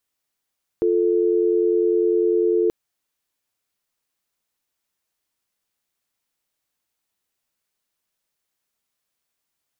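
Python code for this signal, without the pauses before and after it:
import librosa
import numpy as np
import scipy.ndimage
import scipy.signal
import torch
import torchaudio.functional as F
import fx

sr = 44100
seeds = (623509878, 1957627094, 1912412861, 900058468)

y = fx.call_progress(sr, length_s=1.88, kind='dial tone', level_db=-18.5)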